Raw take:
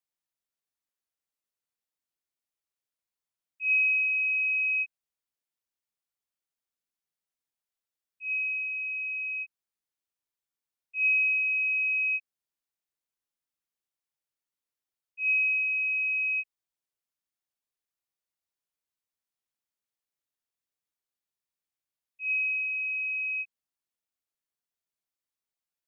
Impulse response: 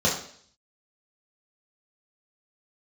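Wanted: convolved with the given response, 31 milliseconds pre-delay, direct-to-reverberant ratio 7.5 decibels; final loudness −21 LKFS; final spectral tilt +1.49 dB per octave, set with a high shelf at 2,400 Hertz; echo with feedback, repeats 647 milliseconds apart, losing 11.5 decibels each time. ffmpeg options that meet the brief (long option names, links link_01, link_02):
-filter_complex "[0:a]highshelf=frequency=2400:gain=4.5,aecho=1:1:647|1294|1941:0.266|0.0718|0.0194,asplit=2[link_01][link_02];[1:a]atrim=start_sample=2205,adelay=31[link_03];[link_02][link_03]afir=irnorm=-1:irlink=0,volume=-22dB[link_04];[link_01][link_04]amix=inputs=2:normalize=0,volume=1dB"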